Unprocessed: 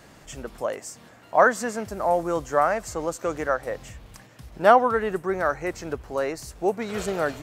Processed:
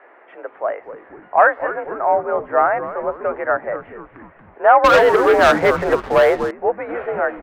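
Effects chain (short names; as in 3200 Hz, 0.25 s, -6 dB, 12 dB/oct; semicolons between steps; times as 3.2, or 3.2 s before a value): soft clip -7.5 dBFS, distortion -18 dB; mistuned SSB +52 Hz 350–2100 Hz; frequency-shifting echo 0.243 s, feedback 48%, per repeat -130 Hz, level -13 dB; 4.84–6.51 sample leveller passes 3; gain +6 dB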